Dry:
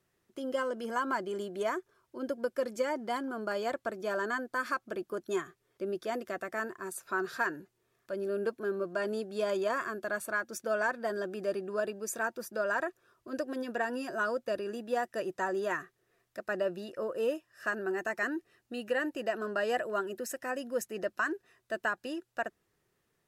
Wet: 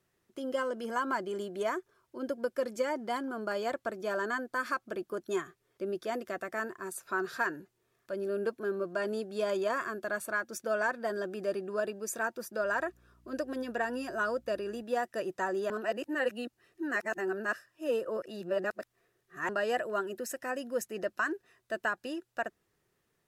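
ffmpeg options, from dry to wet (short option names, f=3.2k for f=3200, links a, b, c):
-filter_complex "[0:a]asettb=1/sr,asplit=3[a][b][c];[a]atrim=end=12.624[d];[b]atrim=start=12.62:end=14.83,asetpts=PTS-STARTPTS,afade=t=in:d=0.004:c=qsin,afade=t=out:st=2.206:d=0.004:c=qsin,aeval=exprs='val(0)+0.000708*(sin(2*PI*60*n/s)+sin(2*PI*2*60*n/s)/2+sin(2*PI*3*60*n/s)/3+sin(2*PI*4*60*n/s)/4+sin(2*PI*5*60*n/s)/5)':c=same[e];[c]atrim=start=14.826[f];[d][e]acrossfade=d=0.004:c1=hsin:c2=qsin[g];[g][f]acrossfade=d=0.004:c1=qsin:c2=hsin,asplit=3[h][i][j];[h]atrim=end=15.702[k];[i]atrim=start=15.698:end=19.492,asetpts=PTS-STARTPTS,areverse[l];[j]atrim=start=19.488[m];[k][l]acrossfade=d=0.004:c1=hsin:c2=hsin[n];[n][m]acrossfade=d=0.004:c1=hsin:c2=hsin"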